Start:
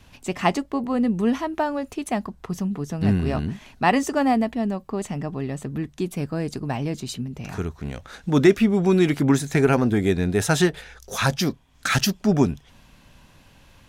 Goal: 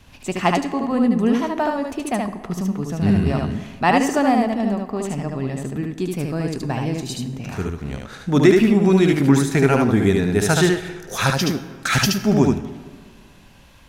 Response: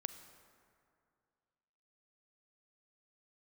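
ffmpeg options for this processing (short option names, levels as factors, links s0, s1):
-filter_complex "[0:a]asplit=2[s0][s1];[1:a]atrim=start_sample=2205,asetrate=61740,aresample=44100,adelay=74[s2];[s1][s2]afir=irnorm=-1:irlink=0,volume=1.33[s3];[s0][s3]amix=inputs=2:normalize=0,volume=1.19"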